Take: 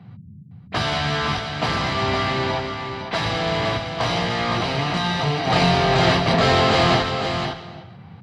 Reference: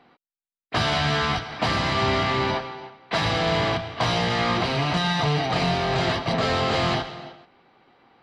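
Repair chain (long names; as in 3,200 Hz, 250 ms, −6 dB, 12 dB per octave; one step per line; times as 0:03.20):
noise reduction from a noise print 18 dB
echo removal 511 ms −7 dB
level 0 dB, from 0:05.47 −5.5 dB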